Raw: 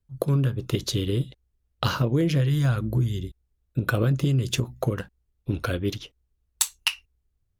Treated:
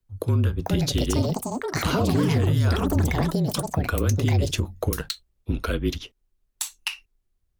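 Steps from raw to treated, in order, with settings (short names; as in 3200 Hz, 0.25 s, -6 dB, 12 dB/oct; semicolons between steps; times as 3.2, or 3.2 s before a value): echoes that change speed 0.517 s, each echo +7 st, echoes 3; limiter -15 dBFS, peak gain reduction 9.5 dB; frequency shift -35 Hz; gain +2 dB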